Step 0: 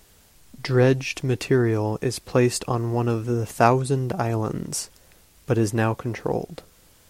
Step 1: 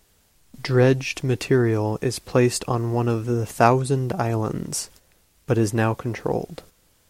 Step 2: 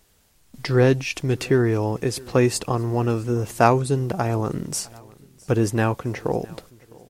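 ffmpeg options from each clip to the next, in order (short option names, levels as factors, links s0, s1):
-af "agate=range=0.447:threshold=0.00447:ratio=16:detection=peak,volume=1.12"
-af "aecho=1:1:658|1316:0.0631|0.0227"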